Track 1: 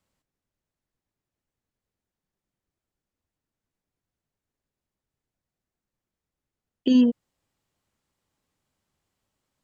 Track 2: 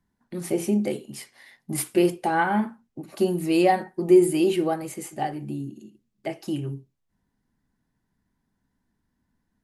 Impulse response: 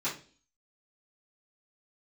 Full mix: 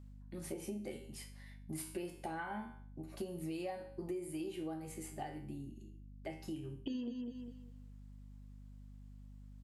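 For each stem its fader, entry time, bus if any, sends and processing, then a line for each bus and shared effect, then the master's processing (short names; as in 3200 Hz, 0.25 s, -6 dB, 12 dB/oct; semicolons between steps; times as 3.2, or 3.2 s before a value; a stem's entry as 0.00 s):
-1.0 dB, 0.00 s, send -21 dB, echo send -16.5 dB, auto duck -14 dB, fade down 0.25 s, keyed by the second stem
-3.0 dB, 0.00 s, no send, no echo send, resonator 79 Hz, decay 0.45 s, harmonics all, mix 80%; hum 50 Hz, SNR 15 dB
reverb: on, RT60 0.40 s, pre-delay 3 ms
echo: feedback echo 0.201 s, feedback 25%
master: compressor 6:1, threshold -39 dBFS, peak gain reduction 13.5 dB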